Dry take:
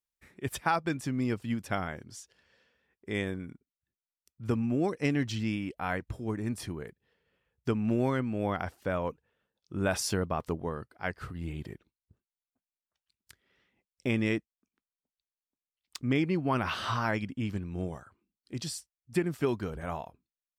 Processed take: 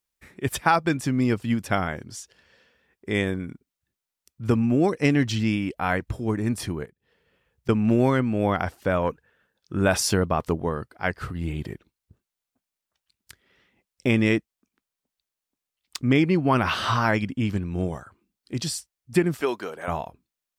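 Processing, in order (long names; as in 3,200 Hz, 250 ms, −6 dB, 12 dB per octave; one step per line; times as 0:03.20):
0:06.85–0:07.69: downward compressor 10 to 1, threshold −56 dBFS, peak gain reduction 20.5 dB
0:09.02–0:09.81: parametric band 1,600 Hz +9.5 dB 0.43 octaves
0:19.41–0:19.88: high-pass filter 450 Hz 12 dB per octave
level +8 dB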